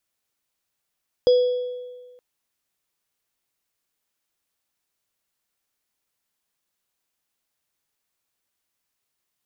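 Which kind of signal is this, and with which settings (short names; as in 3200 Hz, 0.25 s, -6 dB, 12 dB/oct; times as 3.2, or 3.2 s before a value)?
sine partials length 0.92 s, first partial 496 Hz, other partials 3350/4940 Hz, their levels -20/-20 dB, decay 1.50 s, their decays 1.22/0.61 s, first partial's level -11 dB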